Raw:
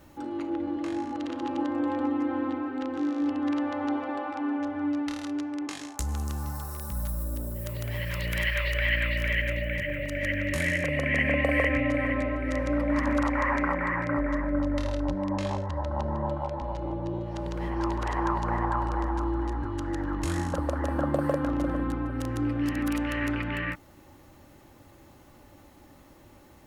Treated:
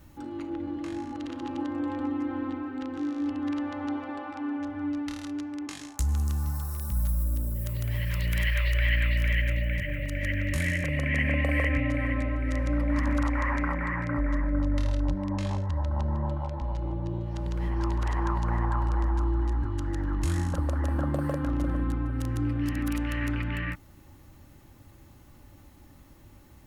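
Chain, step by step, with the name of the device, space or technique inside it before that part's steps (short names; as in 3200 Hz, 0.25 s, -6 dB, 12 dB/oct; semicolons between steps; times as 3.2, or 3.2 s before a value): smiley-face EQ (low shelf 170 Hz +9 dB; bell 540 Hz -5 dB 1.6 oct; high shelf 8600 Hz +4 dB); gain -2.5 dB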